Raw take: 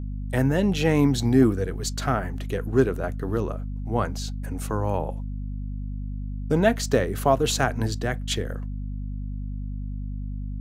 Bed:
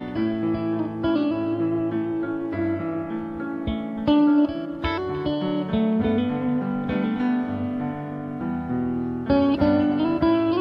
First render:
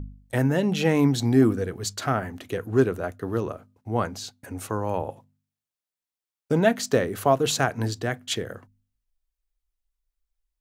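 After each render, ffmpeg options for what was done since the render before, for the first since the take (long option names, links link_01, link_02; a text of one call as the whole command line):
ffmpeg -i in.wav -af "bandreject=frequency=50:width_type=h:width=4,bandreject=frequency=100:width_type=h:width=4,bandreject=frequency=150:width_type=h:width=4,bandreject=frequency=200:width_type=h:width=4,bandreject=frequency=250:width_type=h:width=4" out.wav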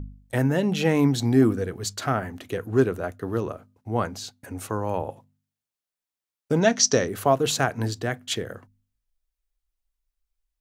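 ffmpeg -i in.wav -filter_complex "[0:a]asettb=1/sr,asplit=3[link_01][link_02][link_03];[link_01]atrim=end=6.614[link_04];[link_02]atrim=start=6.61:end=7.08,asetpts=PTS-STARTPTS,afade=type=in:duration=0.004:curve=qsin,afade=type=out:start_time=0.466:duration=0.004:curve=qsin,lowpass=frequency=5800:width_type=q:width=9.1[link_05];[link_03]atrim=start=7.076[link_06];[link_04][link_05]acrossfade=duration=0.004:curve1=hsin:curve2=qsin[link_07];[link_07][link_06]acrossfade=duration=0.004:curve1=qsin:curve2=hsin" out.wav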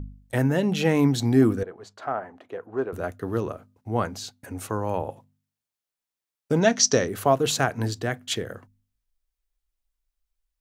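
ffmpeg -i in.wav -filter_complex "[0:a]asettb=1/sr,asplit=3[link_01][link_02][link_03];[link_01]atrim=end=1.634[link_04];[link_02]atrim=start=1.63:end=2.93,asetpts=PTS-STARTPTS,afade=type=in:duration=0.004:curve=qsin,afade=type=out:start_time=1.296:duration=0.004:curve=qsin,bandpass=frequency=770:width_type=q:width=1.3[link_05];[link_03]atrim=start=2.926[link_06];[link_04][link_05]acrossfade=duration=0.004:curve1=hsin:curve2=qsin[link_07];[link_07][link_06]acrossfade=duration=0.004:curve1=qsin:curve2=hsin" out.wav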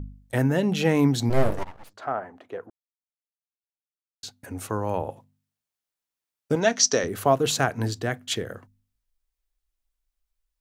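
ffmpeg -i in.wav -filter_complex "[0:a]asplit=3[link_01][link_02][link_03];[link_01]afade=type=out:start_time=1.29:duration=0.02[link_04];[link_02]aeval=exprs='abs(val(0))':channel_layout=same,afade=type=in:start_time=1.29:duration=0.02,afade=type=out:start_time=1.93:duration=0.02[link_05];[link_03]afade=type=in:start_time=1.93:duration=0.02[link_06];[link_04][link_05][link_06]amix=inputs=3:normalize=0,asettb=1/sr,asplit=3[link_07][link_08][link_09];[link_07]atrim=end=6.554[link_10];[link_08]atrim=start=6.55:end=7.04,asetpts=PTS-STARTPTS,afade=type=in:duration=0.004:curve=qsin,afade=type=out:start_time=0.486:duration=0.004:curve=qsin,highpass=frequency=360:poles=1[link_11];[link_09]atrim=start=7.036[link_12];[link_10][link_11]acrossfade=duration=0.004:curve1=hsin:curve2=qsin[link_13];[link_13][link_12]acrossfade=duration=0.004:curve1=qsin:curve2=hsin,asplit=3[link_14][link_15][link_16];[link_14]atrim=end=2.7,asetpts=PTS-STARTPTS,afade=type=out:start_time=2.696:duration=0.004:curve=hsin[link_17];[link_15]atrim=start=2.7:end=4.23,asetpts=PTS-STARTPTS,volume=0[link_18];[link_16]atrim=start=4.23,asetpts=PTS-STARTPTS,afade=type=in:duration=0.004:curve=hsin[link_19];[link_17][link_18][link_19]concat=n=3:v=0:a=1" out.wav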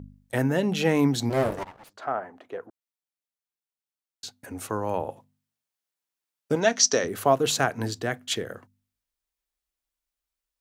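ffmpeg -i in.wav -af "highpass=frequency=160:poles=1" out.wav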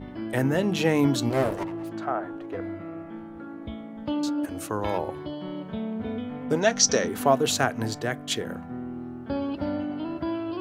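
ffmpeg -i in.wav -i bed.wav -filter_complex "[1:a]volume=-10dB[link_01];[0:a][link_01]amix=inputs=2:normalize=0" out.wav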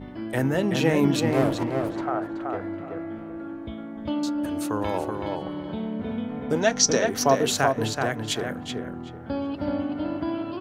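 ffmpeg -i in.wav -filter_complex "[0:a]asplit=2[link_01][link_02];[link_02]adelay=378,lowpass=frequency=3500:poles=1,volume=-4dB,asplit=2[link_03][link_04];[link_04]adelay=378,lowpass=frequency=3500:poles=1,volume=0.25,asplit=2[link_05][link_06];[link_06]adelay=378,lowpass=frequency=3500:poles=1,volume=0.25[link_07];[link_01][link_03][link_05][link_07]amix=inputs=4:normalize=0" out.wav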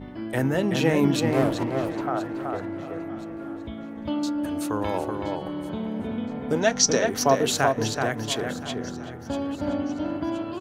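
ffmpeg -i in.wav -af "aecho=1:1:1021|2042|3063:0.133|0.0533|0.0213" out.wav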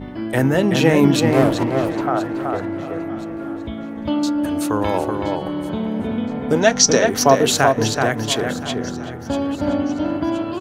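ffmpeg -i in.wav -af "volume=7dB,alimiter=limit=-1dB:level=0:latency=1" out.wav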